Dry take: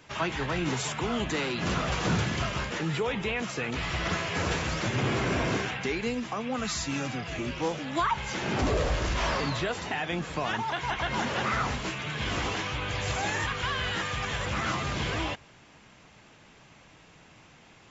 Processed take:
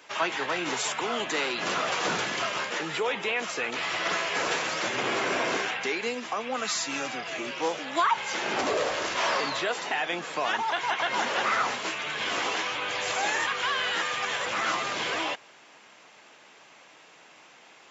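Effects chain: high-pass 430 Hz 12 dB/octave; trim +3.5 dB

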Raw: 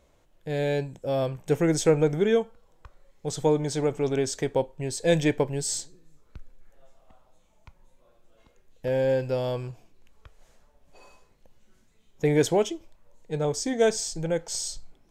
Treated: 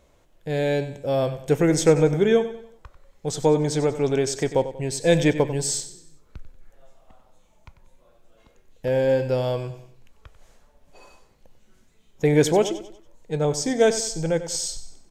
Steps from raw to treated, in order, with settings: feedback delay 94 ms, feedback 40%, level -13 dB; trim +3.5 dB

